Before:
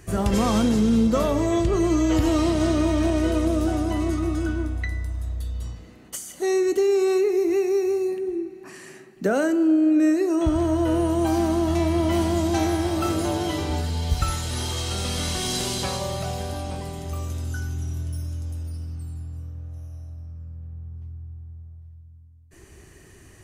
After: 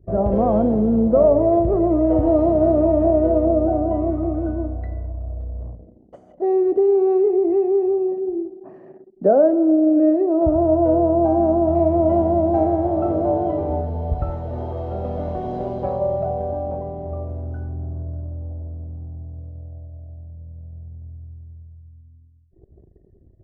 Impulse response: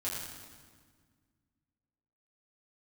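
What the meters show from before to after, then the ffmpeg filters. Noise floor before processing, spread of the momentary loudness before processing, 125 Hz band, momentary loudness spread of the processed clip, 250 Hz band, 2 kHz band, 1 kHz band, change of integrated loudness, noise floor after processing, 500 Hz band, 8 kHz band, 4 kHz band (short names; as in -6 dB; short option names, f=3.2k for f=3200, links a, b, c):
-49 dBFS, 18 LU, 0.0 dB, 19 LU, +2.0 dB, under -15 dB, +5.0 dB, +4.0 dB, -52 dBFS, +7.0 dB, under -40 dB, under -25 dB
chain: -af "anlmdn=0.1,lowpass=f=640:t=q:w=4.1"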